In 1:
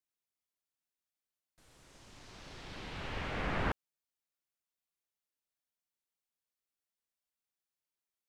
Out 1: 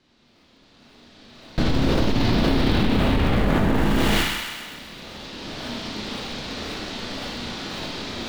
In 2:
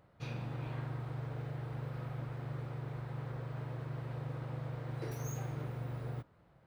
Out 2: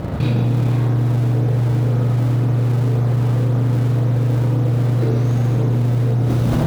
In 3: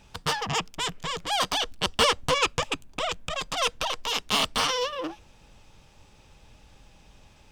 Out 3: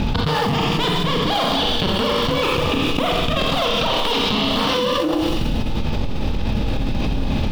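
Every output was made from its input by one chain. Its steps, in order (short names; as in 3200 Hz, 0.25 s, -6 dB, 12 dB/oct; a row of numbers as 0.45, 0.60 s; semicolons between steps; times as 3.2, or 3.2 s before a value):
recorder AGC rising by 11 dB/s; ladder low-pass 4800 Hz, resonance 45%; tilt shelf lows +6 dB; Schroeder reverb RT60 0.73 s, combs from 26 ms, DRR -0.5 dB; in parallel at -11 dB: decimation with a swept rate 35×, swing 160% 1.9 Hz; on the sum: bell 240 Hz +6 dB 0.89 oct; on a send: thin delay 0.129 s, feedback 62%, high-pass 3200 Hz, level -9 dB; on the sum: fast leveller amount 100%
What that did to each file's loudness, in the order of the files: +15.5, +24.0, +7.0 LU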